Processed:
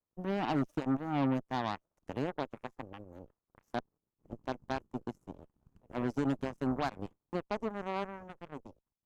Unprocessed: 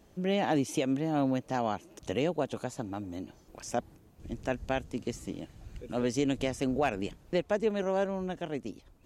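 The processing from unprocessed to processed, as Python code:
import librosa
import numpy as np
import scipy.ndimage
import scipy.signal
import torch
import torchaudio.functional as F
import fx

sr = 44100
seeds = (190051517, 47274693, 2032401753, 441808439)

y = fx.graphic_eq(x, sr, hz=(125, 250, 500, 1000, 2000, 4000, 8000), db=(5, 6, -7, 11, -9, -10, -7))
y = fx.cheby_harmonics(y, sr, harmonics=(7, 8), levels_db=(-17, -22), full_scale_db=-14.5)
y = y * librosa.db_to_amplitude(-7.0)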